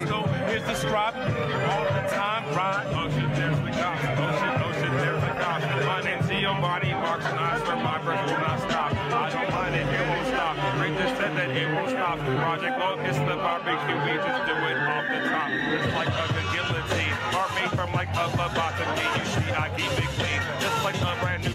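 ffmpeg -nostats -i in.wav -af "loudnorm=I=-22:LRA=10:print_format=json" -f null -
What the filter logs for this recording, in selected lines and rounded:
"input_i" : "-25.7",
"input_tp" : "-12.9",
"input_lra" : "0.6",
"input_thresh" : "-35.7",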